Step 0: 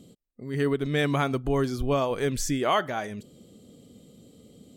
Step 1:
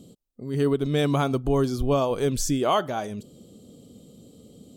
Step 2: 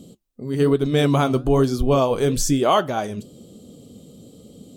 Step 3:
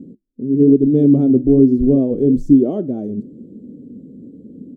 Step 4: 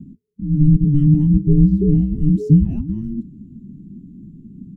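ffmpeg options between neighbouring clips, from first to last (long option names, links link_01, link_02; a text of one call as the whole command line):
ffmpeg -i in.wav -af "equalizer=frequency=1900:width_type=o:width=0.74:gain=-11,volume=3dB" out.wav
ffmpeg -i in.wav -af "flanger=delay=3.3:depth=9.7:regen=-68:speed=1.1:shape=triangular,volume=9dB" out.wav
ffmpeg -i in.wav -af "firequalizer=gain_entry='entry(100,0);entry(260,14);entry(1000,-28)':delay=0.05:min_phase=1,volume=-2dB" out.wav
ffmpeg -i in.wav -af "afreqshift=-440,volume=-1dB" out.wav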